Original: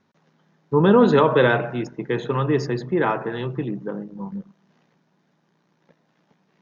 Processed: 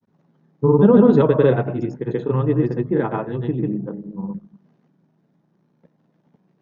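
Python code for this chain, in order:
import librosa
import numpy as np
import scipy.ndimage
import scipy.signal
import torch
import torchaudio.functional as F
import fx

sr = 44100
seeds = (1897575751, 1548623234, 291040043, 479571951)

y = fx.tilt_shelf(x, sr, db=8.0, hz=760.0)
y = fx.granulator(y, sr, seeds[0], grain_ms=100.0, per_s=20.0, spray_ms=100.0, spread_st=0)
y = y * librosa.db_to_amplitude(-1.5)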